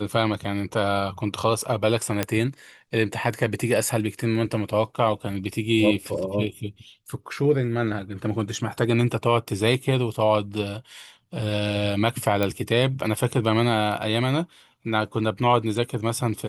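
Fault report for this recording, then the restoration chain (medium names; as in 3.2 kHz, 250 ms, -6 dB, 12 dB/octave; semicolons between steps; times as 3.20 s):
2.23 s: pop -7 dBFS
12.43 s: pop -10 dBFS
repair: de-click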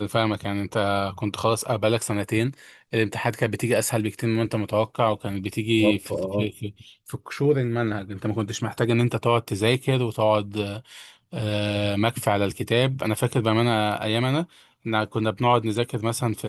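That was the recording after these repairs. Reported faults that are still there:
nothing left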